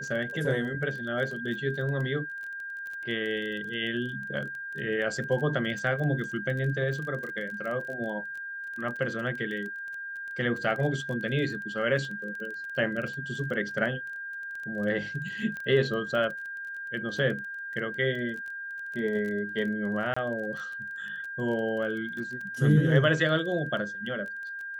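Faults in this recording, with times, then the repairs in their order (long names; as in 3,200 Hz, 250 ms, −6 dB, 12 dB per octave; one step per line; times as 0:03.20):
surface crackle 22 per second −35 dBFS
whistle 1,600 Hz −35 dBFS
0:15.57: click −25 dBFS
0:20.14–0:20.16: drop-out 25 ms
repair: click removal
notch filter 1,600 Hz, Q 30
repair the gap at 0:20.14, 25 ms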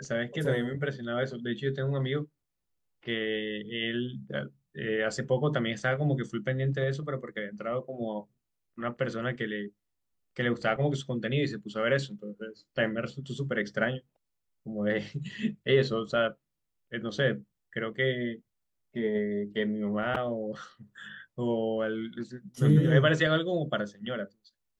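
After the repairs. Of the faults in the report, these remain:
none of them is left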